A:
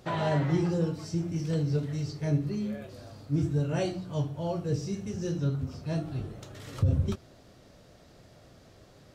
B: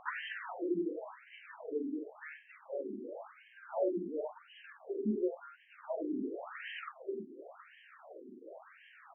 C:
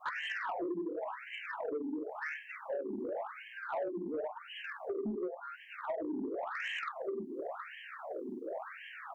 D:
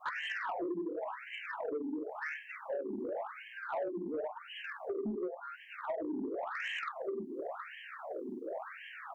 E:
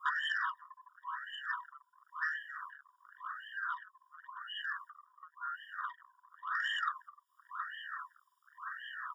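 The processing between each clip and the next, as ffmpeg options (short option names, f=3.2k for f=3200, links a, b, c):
-af "acompressor=threshold=-36dB:ratio=6,aecho=1:1:46|92|812:0.447|0.501|0.141,afftfilt=real='re*between(b*sr/1024,290*pow(2300/290,0.5+0.5*sin(2*PI*0.93*pts/sr))/1.41,290*pow(2300/290,0.5+0.5*sin(2*PI*0.93*pts/sr))*1.41)':imag='im*between(b*sr/1024,290*pow(2300/290,0.5+0.5*sin(2*PI*0.93*pts/sr))/1.41,290*pow(2300/290,0.5+0.5*sin(2*PI*0.93*pts/sr))*1.41)':win_size=1024:overlap=0.75,volume=9.5dB"
-af "adynamicequalizer=threshold=0.00224:dfrequency=780:dqfactor=1.4:tfrequency=780:tqfactor=1.4:attack=5:release=100:ratio=0.375:range=3:mode=boostabove:tftype=bell,acompressor=threshold=-44dB:ratio=6,asoftclip=type=tanh:threshold=-39.5dB,volume=10.5dB"
-af anull
-af "afftfilt=real='re*eq(mod(floor(b*sr/1024/950),2),1)':imag='im*eq(mod(floor(b*sr/1024/950),2),1)':win_size=1024:overlap=0.75,volume=5.5dB"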